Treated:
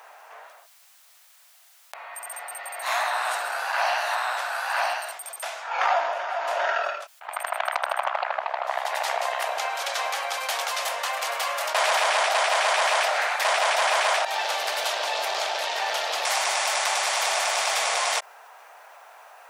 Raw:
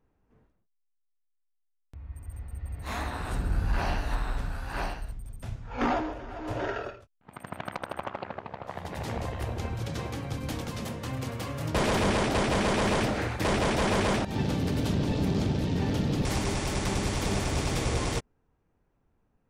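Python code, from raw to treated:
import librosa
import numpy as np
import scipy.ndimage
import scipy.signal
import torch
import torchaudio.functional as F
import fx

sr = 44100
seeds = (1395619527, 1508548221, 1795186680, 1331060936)

y = scipy.signal.sosfilt(scipy.signal.ellip(4, 1.0, 70, 650.0, 'highpass', fs=sr, output='sos'), x)
y = fx.env_flatten(y, sr, amount_pct=50)
y = y * 10.0 ** (6.5 / 20.0)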